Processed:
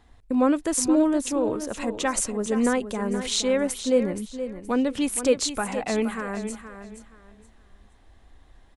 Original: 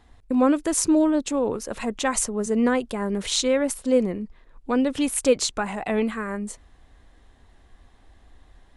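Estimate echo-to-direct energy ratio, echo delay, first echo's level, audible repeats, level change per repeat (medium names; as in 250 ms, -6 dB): -10.0 dB, 472 ms, -10.5 dB, 3, -12.0 dB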